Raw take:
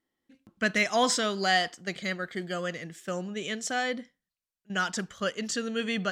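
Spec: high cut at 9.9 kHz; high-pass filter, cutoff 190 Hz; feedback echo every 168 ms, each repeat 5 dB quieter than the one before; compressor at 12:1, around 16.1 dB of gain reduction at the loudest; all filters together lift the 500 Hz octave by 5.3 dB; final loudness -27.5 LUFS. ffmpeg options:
-af "highpass=190,lowpass=9900,equalizer=f=500:t=o:g=6.5,acompressor=threshold=0.0224:ratio=12,aecho=1:1:168|336|504|672|840|1008|1176:0.562|0.315|0.176|0.0988|0.0553|0.031|0.0173,volume=2.82"

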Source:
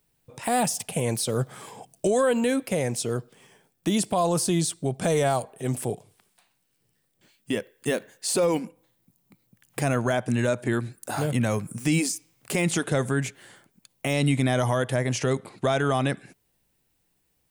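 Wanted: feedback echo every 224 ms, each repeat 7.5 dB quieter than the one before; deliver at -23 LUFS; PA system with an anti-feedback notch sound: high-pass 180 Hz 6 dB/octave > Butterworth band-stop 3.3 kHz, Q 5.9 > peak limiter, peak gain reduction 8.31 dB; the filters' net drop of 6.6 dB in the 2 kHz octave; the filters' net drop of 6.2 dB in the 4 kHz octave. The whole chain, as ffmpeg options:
-af "highpass=f=180:p=1,asuperstop=centerf=3300:order=8:qfactor=5.9,equalizer=f=2000:t=o:g=-8,equalizer=f=4000:t=o:g=-3.5,aecho=1:1:224|448|672|896|1120:0.422|0.177|0.0744|0.0312|0.0131,volume=2.37,alimiter=limit=0.237:level=0:latency=1"

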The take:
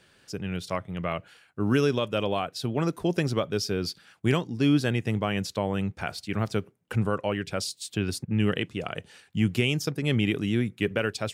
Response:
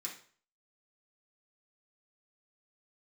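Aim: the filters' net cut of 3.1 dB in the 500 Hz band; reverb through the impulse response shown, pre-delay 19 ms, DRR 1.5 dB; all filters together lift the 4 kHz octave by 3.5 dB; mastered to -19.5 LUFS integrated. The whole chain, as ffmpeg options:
-filter_complex "[0:a]equalizer=f=500:t=o:g=-4,equalizer=f=4000:t=o:g=5,asplit=2[s0][s1];[1:a]atrim=start_sample=2205,adelay=19[s2];[s1][s2]afir=irnorm=-1:irlink=0,volume=1[s3];[s0][s3]amix=inputs=2:normalize=0,volume=2.37"

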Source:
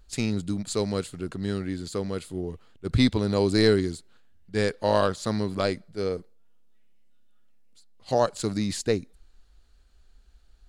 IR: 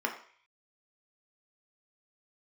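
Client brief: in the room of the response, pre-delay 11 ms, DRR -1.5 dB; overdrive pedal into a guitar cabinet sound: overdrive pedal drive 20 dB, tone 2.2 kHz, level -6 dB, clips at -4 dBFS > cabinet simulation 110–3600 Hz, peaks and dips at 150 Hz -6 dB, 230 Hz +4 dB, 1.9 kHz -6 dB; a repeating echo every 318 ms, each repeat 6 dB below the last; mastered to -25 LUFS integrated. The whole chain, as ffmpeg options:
-filter_complex "[0:a]aecho=1:1:318|636|954|1272|1590|1908:0.501|0.251|0.125|0.0626|0.0313|0.0157,asplit=2[s0][s1];[1:a]atrim=start_sample=2205,adelay=11[s2];[s1][s2]afir=irnorm=-1:irlink=0,volume=0.501[s3];[s0][s3]amix=inputs=2:normalize=0,asplit=2[s4][s5];[s5]highpass=f=720:p=1,volume=10,asoftclip=type=tanh:threshold=0.631[s6];[s4][s6]amix=inputs=2:normalize=0,lowpass=f=2200:p=1,volume=0.501,highpass=110,equalizer=f=150:t=q:w=4:g=-6,equalizer=f=230:t=q:w=4:g=4,equalizer=f=1900:t=q:w=4:g=-6,lowpass=f=3600:w=0.5412,lowpass=f=3600:w=1.3066,volume=0.422"

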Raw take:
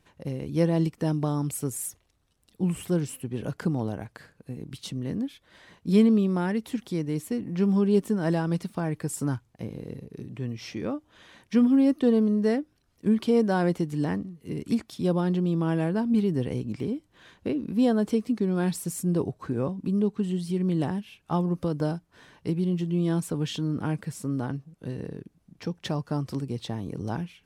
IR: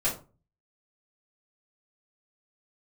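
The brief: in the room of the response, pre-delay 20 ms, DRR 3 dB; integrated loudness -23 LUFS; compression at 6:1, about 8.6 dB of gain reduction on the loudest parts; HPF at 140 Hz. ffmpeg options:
-filter_complex "[0:a]highpass=140,acompressor=threshold=0.0501:ratio=6,asplit=2[s0][s1];[1:a]atrim=start_sample=2205,adelay=20[s2];[s1][s2]afir=irnorm=-1:irlink=0,volume=0.251[s3];[s0][s3]amix=inputs=2:normalize=0,volume=2.37"

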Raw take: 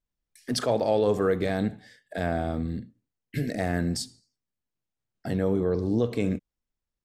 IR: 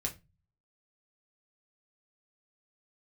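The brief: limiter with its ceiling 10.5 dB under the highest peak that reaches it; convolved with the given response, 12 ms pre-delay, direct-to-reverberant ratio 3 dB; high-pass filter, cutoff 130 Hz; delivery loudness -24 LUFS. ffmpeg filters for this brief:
-filter_complex "[0:a]highpass=130,alimiter=limit=0.0708:level=0:latency=1,asplit=2[s0][s1];[1:a]atrim=start_sample=2205,adelay=12[s2];[s1][s2]afir=irnorm=-1:irlink=0,volume=0.596[s3];[s0][s3]amix=inputs=2:normalize=0,volume=2.24"

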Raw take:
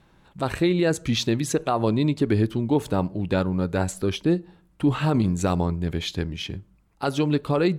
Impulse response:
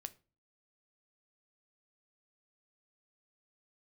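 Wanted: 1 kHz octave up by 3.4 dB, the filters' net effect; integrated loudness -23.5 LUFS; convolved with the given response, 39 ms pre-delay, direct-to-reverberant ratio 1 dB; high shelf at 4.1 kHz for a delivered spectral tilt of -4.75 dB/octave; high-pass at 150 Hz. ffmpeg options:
-filter_complex "[0:a]highpass=150,equalizer=f=1000:t=o:g=4,highshelf=f=4100:g=8,asplit=2[s0][s1];[1:a]atrim=start_sample=2205,adelay=39[s2];[s1][s2]afir=irnorm=-1:irlink=0,volume=1.5[s3];[s0][s3]amix=inputs=2:normalize=0,volume=0.794"

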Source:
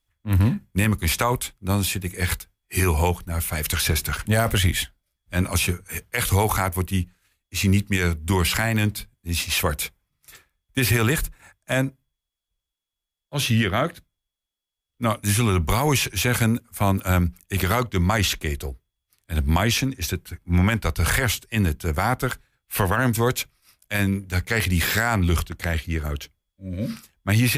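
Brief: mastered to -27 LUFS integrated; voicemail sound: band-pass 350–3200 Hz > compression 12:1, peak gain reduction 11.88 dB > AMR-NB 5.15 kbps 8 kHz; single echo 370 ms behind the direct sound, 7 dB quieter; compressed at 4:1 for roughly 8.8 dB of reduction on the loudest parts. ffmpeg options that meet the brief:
-af "acompressor=threshold=0.0501:ratio=4,highpass=350,lowpass=3200,aecho=1:1:370:0.447,acompressor=threshold=0.0158:ratio=12,volume=7.08" -ar 8000 -c:a libopencore_amrnb -b:a 5150

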